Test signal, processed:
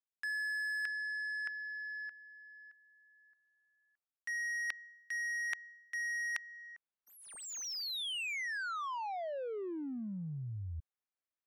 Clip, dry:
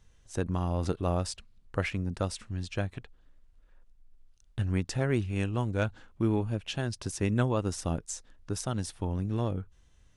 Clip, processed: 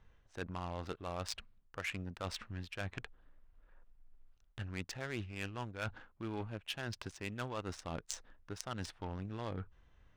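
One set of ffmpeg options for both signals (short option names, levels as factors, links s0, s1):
-af "adynamicsmooth=sensitivity=7:basefreq=1300,tiltshelf=f=820:g=-8,areverse,acompressor=threshold=0.00708:ratio=6,areverse,volume=1.68"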